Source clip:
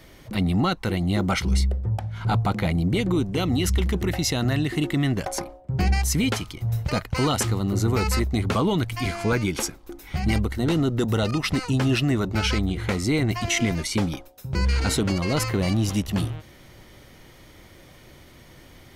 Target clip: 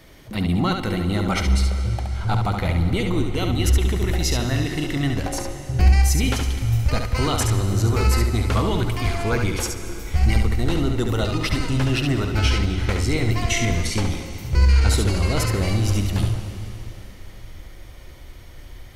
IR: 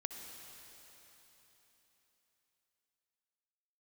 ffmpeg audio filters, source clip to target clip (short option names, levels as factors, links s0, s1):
-filter_complex "[0:a]asubboost=boost=7:cutoff=62,asplit=2[s0][s1];[1:a]atrim=start_sample=2205,asetrate=48510,aresample=44100,adelay=70[s2];[s1][s2]afir=irnorm=-1:irlink=0,volume=0.841[s3];[s0][s3]amix=inputs=2:normalize=0"